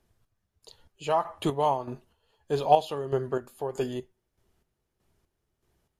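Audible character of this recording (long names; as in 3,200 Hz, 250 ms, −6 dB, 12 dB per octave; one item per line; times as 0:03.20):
chopped level 1.6 Hz, depth 60%, duty 40%
MP3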